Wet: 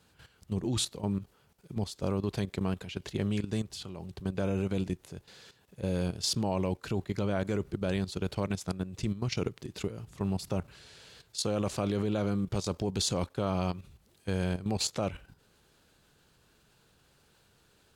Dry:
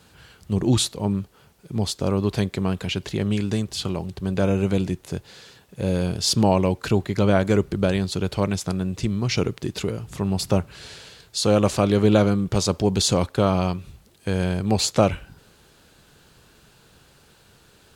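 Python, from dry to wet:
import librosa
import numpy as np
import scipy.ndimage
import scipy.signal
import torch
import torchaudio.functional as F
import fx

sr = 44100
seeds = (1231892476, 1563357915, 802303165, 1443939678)

y = fx.level_steps(x, sr, step_db=12)
y = y * 10.0 ** (-5.5 / 20.0)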